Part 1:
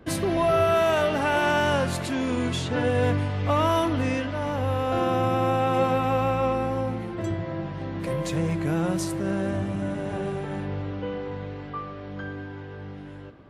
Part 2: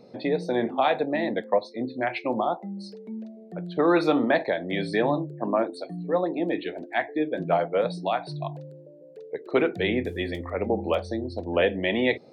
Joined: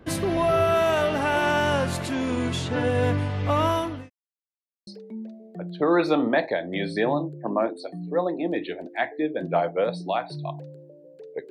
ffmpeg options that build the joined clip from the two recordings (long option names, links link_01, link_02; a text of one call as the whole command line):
ffmpeg -i cue0.wav -i cue1.wav -filter_complex "[0:a]apad=whole_dur=11.5,atrim=end=11.5,asplit=2[link_01][link_02];[link_01]atrim=end=4.1,asetpts=PTS-STARTPTS,afade=type=out:start_time=3.67:duration=0.43[link_03];[link_02]atrim=start=4.1:end=4.87,asetpts=PTS-STARTPTS,volume=0[link_04];[1:a]atrim=start=2.84:end=9.47,asetpts=PTS-STARTPTS,afade=type=in:duration=0.004:curve=hsin[link_05];[link_03][link_04][link_05]concat=n=3:v=0:a=1" out.wav